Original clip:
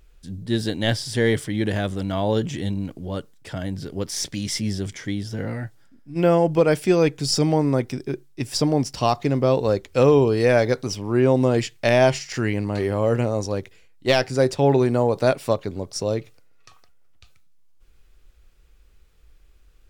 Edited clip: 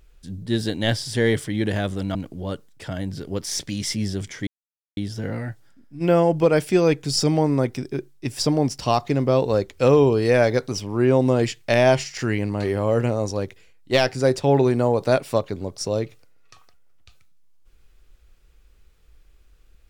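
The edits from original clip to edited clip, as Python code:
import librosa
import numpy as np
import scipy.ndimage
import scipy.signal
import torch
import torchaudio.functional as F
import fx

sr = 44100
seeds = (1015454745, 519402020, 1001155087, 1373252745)

y = fx.edit(x, sr, fx.cut(start_s=2.15, length_s=0.65),
    fx.insert_silence(at_s=5.12, length_s=0.5), tone=tone)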